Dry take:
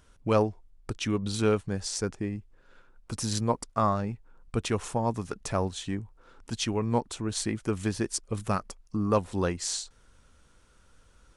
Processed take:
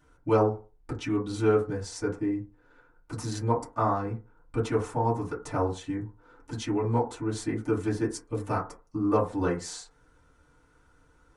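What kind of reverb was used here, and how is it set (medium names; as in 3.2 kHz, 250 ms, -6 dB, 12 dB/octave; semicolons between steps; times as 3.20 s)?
FDN reverb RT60 0.33 s, low-frequency decay 0.85×, high-frequency decay 0.25×, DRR -9.5 dB; trim -10 dB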